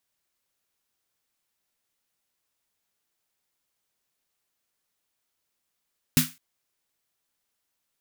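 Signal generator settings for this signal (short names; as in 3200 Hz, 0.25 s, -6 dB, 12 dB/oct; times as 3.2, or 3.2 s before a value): snare drum length 0.21 s, tones 160 Hz, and 250 Hz, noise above 1300 Hz, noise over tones -1.5 dB, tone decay 0.20 s, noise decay 0.28 s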